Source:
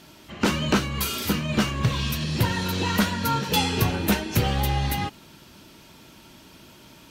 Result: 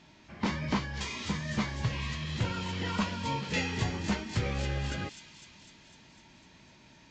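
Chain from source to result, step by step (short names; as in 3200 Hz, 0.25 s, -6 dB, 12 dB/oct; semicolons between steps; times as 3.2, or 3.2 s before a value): formant shift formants -5 st; thin delay 0.252 s, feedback 66%, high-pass 4200 Hz, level -3.5 dB; gain -8.5 dB; µ-law 128 kbps 16000 Hz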